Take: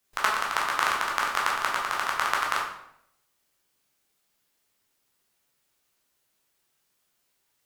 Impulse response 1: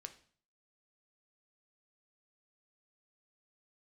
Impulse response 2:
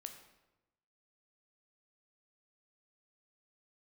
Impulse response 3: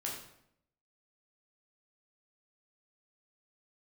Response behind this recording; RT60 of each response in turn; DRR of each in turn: 3; 0.50, 1.0, 0.75 s; 7.0, 5.5, -3.0 dB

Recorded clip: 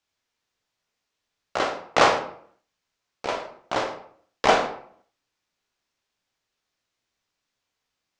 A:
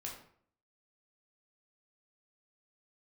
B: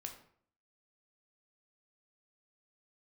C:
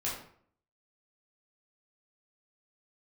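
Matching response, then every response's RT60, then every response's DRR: B; 0.60, 0.60, 0.60 s; -2.0, 3.0, -6.5 dB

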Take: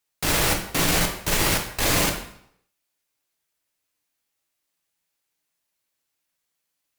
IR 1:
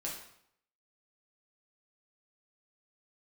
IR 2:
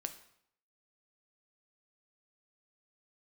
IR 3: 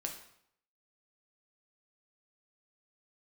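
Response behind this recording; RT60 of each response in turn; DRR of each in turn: 3; 0.70, 0.70, 0.70 s; -4.0, 7.5, 1.5 dB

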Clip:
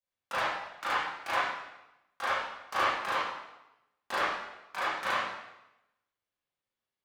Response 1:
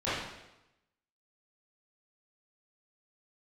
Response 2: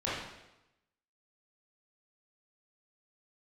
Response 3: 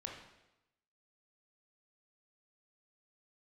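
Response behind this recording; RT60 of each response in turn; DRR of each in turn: 1; 0.95, 0.95, 0.95 s; -14.0, -9.5, 0.0 dB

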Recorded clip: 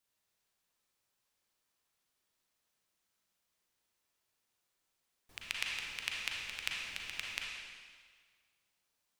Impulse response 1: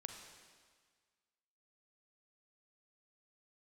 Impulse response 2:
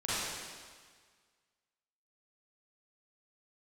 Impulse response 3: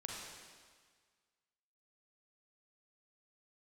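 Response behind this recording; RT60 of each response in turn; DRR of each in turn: 3; 1.6, 1.7, 1.7 s; 4.0, -11.5, -2.5 dB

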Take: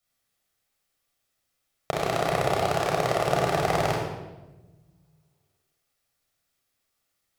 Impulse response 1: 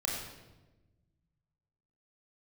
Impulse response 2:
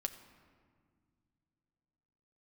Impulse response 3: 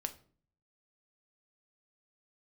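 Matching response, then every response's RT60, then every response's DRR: 1; 1.1, 2.0, 0.45 s; -3.0, 6.5, 7.5 dB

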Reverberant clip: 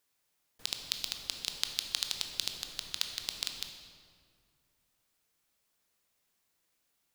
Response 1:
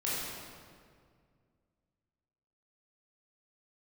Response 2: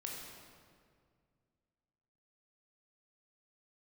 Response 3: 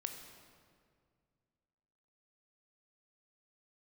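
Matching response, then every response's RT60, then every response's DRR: 3; 2.0, 2.1, 2.1 s; -8.5, -2.0, 4.5 dB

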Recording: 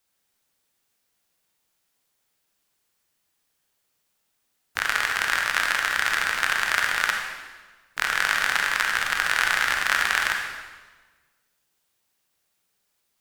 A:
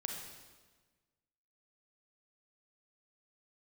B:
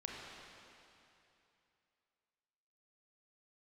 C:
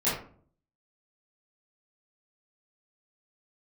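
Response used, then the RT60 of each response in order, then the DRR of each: A; 1.4, 2.8, 0.50 s; 1.5, -2.0, -12.0 dB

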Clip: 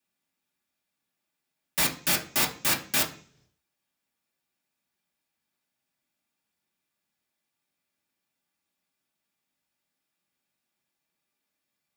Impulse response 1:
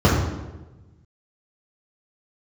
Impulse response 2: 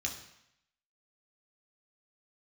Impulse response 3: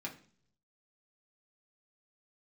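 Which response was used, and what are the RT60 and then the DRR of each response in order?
3; 1.1, 0.75, 0.50 s; -7.5, 0.0, -2.0 dB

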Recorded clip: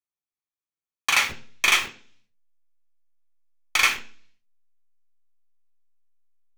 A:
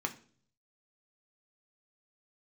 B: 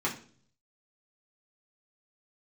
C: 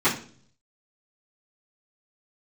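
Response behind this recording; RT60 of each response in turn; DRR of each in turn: A; 0.45, 0.45, 0.45 s; 4.0, -5.0, -14.5 dB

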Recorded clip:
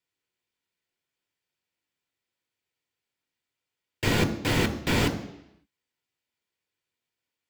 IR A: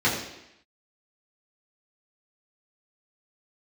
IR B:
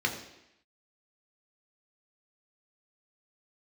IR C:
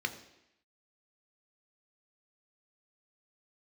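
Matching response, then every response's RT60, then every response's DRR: C; 0.85, 0.85, 0.85 s; -9.0, 0.5, 6.0 dB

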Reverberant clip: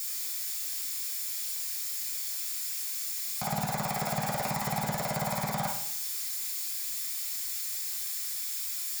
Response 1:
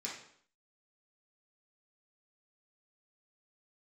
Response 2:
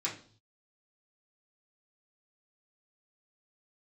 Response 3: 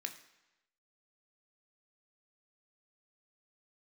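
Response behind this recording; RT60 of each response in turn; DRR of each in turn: 1; 0.60, 0.45, 1.0 s; -5.5, -7.0, 5.0 dB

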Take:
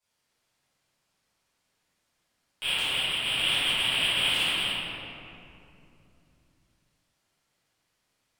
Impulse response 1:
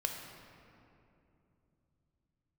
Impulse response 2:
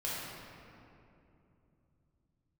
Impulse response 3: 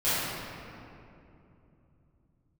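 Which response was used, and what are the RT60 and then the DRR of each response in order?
3; 2.9, 2.8, 2.8 s; 2.0, -7.5, -15.5 dB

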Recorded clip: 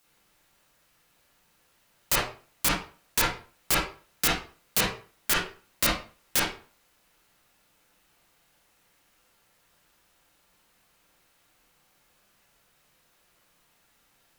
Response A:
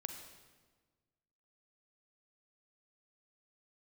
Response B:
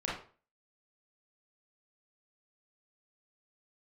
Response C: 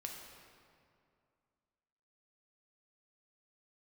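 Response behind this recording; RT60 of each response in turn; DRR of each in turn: B; 1.4, 0.40, 2.4 s; 5.0, -6.0, 0.5 dB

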